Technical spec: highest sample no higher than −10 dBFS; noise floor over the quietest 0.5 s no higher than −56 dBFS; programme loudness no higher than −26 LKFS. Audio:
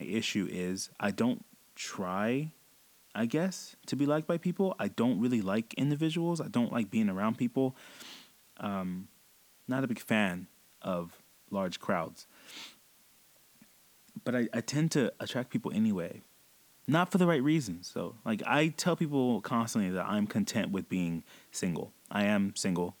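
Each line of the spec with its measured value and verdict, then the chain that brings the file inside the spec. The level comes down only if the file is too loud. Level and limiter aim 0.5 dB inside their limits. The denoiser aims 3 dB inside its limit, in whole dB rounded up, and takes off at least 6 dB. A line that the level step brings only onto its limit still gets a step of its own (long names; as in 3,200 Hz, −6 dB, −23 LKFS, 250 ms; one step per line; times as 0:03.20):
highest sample −12.0 dBFS: in spec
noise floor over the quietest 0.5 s −63 dBFS: in spec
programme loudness −32.0 LKFS: in spec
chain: no processing needed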